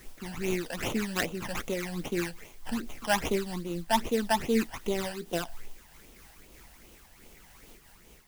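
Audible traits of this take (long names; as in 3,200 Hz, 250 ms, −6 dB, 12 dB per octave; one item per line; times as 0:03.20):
aliases and images of a low sample rate 4,300 Hz, jitter 20%
phaser sweep stages 12, 2.5 Hz, lowest notch 370–1,700 Hz
a quantiser's noise floor 10 bits, dither triangular
amplitude modulation by smooth noise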